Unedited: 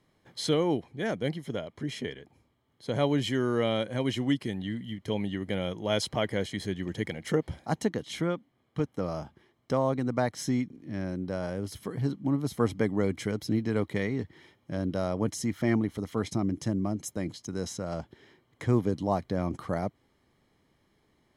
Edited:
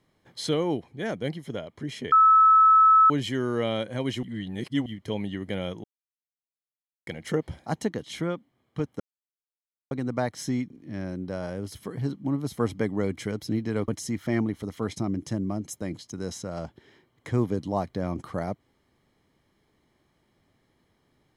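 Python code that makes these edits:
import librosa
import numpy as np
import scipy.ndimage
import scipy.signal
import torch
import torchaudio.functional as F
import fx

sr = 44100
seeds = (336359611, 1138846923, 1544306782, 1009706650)

y = fx.edit(x, sr, fx.bleep(start_s=2.12, length_s=0.98, hz=1300.0, db=-13.0),
    fx.reverse_span(start_s=4.23, length_s=0.63),
    fx.silence(start_s=5.84, length_s=1.23),
    fx.silence(start_s=9.0, length_s=0.91),
    fx.cut(start_s=13.88, length_s=1.35), tone=tone)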